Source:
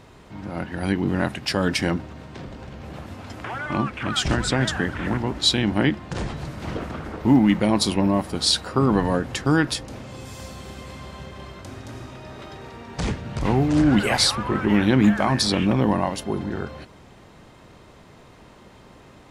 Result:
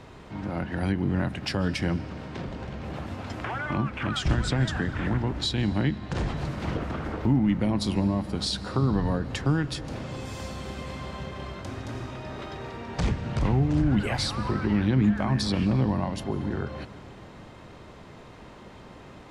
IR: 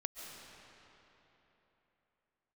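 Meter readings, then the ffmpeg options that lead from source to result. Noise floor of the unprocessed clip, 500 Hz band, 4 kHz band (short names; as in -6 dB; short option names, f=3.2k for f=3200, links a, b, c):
-49 dBFS, -6.5 dB, -9.0 dB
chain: -filter_complex "[0:a]highshelf=f=8.3k:g=-11,acrossover=split=160[a][b];[b]acompressor=threshold=-32dB:ratio=3[c];[a][c]amix=inputs=2:normalize=0,asplit=2[d][e];[1:a]atrim=start_sample=2205[f];[e][f]afir=irnorm=-1:irlink=0,volume=-9.5dB[g];[d][g]amix=inputs=2:normalize=0"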